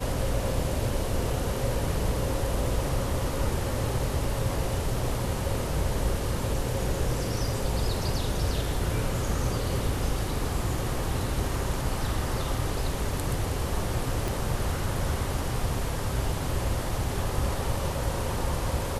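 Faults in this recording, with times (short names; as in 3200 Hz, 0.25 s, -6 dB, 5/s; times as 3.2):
14.28 pop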